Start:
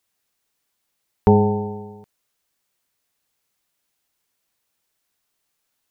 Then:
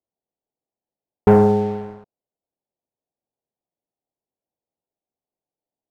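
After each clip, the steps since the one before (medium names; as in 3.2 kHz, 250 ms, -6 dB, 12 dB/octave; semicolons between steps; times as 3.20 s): steep low-pass 810 Hz 36 dB/octave; bass shelf 120 Hz -9.5 dB; waveshaping leveller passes 2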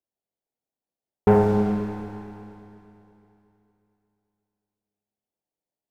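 Schroeder reverb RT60 3 s, combs from 29 ms, DRR 2.5 dB; trim -4 dB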